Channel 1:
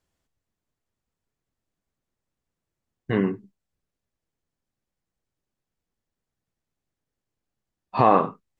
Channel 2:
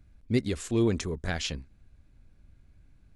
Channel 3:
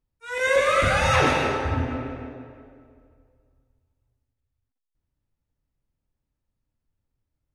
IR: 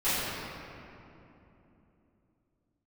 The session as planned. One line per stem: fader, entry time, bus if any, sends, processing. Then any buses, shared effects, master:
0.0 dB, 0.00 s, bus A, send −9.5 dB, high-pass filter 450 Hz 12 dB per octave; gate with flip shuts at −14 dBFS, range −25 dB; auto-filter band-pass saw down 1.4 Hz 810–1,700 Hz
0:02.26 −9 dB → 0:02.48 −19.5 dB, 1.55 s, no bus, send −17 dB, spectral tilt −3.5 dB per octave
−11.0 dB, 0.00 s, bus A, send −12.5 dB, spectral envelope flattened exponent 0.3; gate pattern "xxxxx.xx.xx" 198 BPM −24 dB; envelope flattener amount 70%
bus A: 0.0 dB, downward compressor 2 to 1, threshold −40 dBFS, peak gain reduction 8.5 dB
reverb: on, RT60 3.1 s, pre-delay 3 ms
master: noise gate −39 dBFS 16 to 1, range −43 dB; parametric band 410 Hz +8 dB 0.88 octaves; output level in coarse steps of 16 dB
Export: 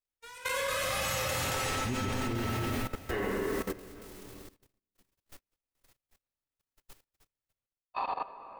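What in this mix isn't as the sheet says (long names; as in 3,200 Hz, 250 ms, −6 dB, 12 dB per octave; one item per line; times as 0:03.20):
stem 1: missing auto-filter band-pass saw down 1.4 Hz 810–1,700 Hz
master: missing parametric band 410 Hz +8 dB 0.88 octaves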